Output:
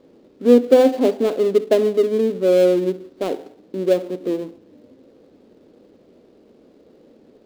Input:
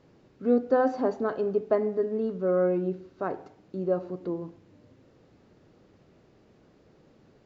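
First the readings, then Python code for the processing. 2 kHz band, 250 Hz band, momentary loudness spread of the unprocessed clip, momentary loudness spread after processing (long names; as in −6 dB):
+5.5 dB, +9.5 dB, 11 LU, 13 LU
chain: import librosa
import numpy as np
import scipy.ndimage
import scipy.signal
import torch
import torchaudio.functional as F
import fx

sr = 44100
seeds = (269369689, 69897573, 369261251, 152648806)

y = fx.dead_time(x, sr, dead_ms=0.23)
y = fx.graphic_eq_10(y, sr, hz=(125, 250, 500, 4000), db=(-7, 11, 11, 5))
y = y * librosa.db_to_amplitude(-1.0)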